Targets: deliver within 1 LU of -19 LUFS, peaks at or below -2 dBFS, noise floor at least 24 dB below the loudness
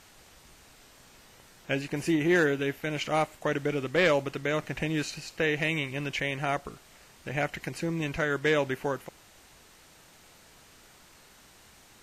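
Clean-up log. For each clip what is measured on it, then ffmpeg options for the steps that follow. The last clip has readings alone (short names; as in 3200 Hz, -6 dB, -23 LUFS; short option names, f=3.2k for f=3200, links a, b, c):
loudness -29.0 LUFS; peak -14.5 dBFS; loudness target -19.0 LUFS
-> -af "volume=10dB"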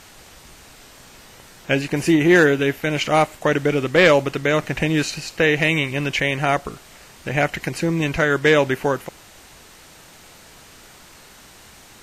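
loudness -19.0 LUFS; peak -4.5 dBFS; noise floor -46 dBFS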